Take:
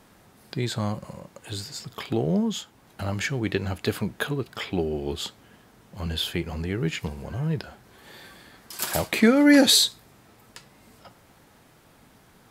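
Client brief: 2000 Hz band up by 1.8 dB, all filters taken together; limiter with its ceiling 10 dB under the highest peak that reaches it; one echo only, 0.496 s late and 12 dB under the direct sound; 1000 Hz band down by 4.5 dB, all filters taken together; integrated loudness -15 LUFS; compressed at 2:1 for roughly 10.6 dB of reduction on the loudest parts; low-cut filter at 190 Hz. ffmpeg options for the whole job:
-af "highpass=190,equalizer=f=1k:t=o:g=-8,equalizer=f=2k:t=o:g=4.5,acompressor=threshold=-33dB:ratio=2,alimiter=level_in=0.5dB:limit=-24dB:level=0:latency=1,volume=-0.5dB,aecho=1:1:496:0.251,volume=21.5dB"

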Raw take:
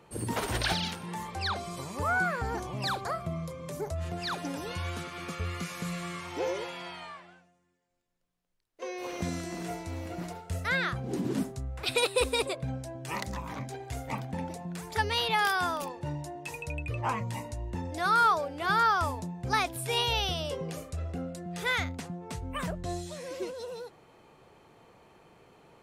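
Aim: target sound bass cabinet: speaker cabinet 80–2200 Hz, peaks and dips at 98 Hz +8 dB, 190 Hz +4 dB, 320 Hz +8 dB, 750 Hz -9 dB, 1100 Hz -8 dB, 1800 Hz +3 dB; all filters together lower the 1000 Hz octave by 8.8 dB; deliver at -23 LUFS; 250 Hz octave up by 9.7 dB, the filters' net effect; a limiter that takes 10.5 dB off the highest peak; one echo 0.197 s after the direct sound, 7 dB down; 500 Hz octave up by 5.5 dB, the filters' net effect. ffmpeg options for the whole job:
-af "equalizer=f=250:t=o:g=6.5,equalizer=f=500:t=o:g=6,equalizer=f=1k:t=o:g=-8.5,alimiter=limit=-22dB:level=0:latency=1,highpass=f=80:w=0.5412,highpass=f=80:w=1.3066,equalizer=f=98:t=q:w=4:g=8,equalizer=f=190:t=q:w=4:g=4,equalizer=f=320:t=q:w=4:g=8,equalizer=f=750:t=q:w=4:g=-9,equalizer=f=1.1k:t=q:w=4:g=-8,equalizer=f=1.8k:t=q:w=4:g=3,lowpass=f=2.2k:w=0.5412,lowpass=f=2.2k:w=1.3066,aecho=1:1:197:0.447,volume=8dB"

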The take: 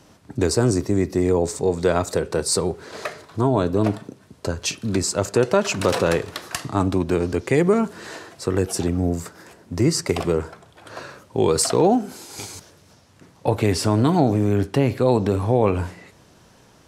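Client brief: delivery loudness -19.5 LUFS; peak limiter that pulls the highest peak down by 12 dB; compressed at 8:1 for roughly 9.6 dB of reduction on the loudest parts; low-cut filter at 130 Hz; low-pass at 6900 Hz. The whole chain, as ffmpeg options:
-af "highpass=130,lowpass=6.9k,acompressor=threshold=-23dB:ratio=8,volume=15dB,alimiter=limit=-9dB:level=0:latency=1"

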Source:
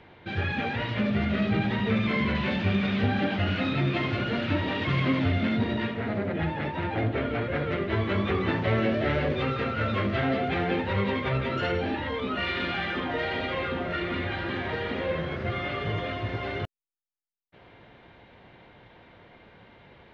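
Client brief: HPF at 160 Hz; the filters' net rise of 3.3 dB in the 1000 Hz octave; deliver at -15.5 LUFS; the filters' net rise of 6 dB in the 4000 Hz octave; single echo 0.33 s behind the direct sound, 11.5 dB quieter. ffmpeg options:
-af "highpass=160,equalizer=f=1k:t=o:g=4,equalizer=f=4k:t=o:g=8,aecho=1:1:330:0.266,volume=11dB"

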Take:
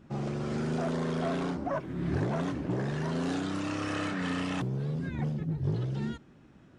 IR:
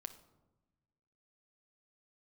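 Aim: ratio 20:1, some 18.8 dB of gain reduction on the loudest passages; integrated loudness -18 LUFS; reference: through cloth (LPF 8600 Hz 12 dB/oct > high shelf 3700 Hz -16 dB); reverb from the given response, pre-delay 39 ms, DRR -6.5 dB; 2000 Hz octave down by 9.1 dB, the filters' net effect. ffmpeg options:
-filter_complex "[0:a]equalizer=f=2k:t=o:g=-8,acompressor=threshold=-44dB:ratio=20,asplit=2[a][b];[1:a]atrim=start_sample=2205,adelay=39[c];[b][c]afir=irnorm=-1:irlink=0,volume=10.5dB[d];[a][d]amix=inputs=2:normalize=0,lowpass=8.6k,highshelf=f=3.7k:g=-16,volume=23dB"

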